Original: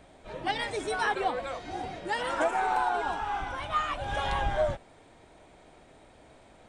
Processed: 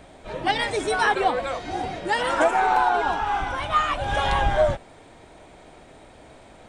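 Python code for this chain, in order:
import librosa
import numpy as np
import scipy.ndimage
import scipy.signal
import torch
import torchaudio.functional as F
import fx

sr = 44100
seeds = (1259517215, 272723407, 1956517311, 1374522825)

y = fx.peak_eq(x, sr, hz=8500.0, db=-6.5, octaves=0.39, at=(2.52, 3.27))
y = y * 10.0 ** (7.5 / 20.0)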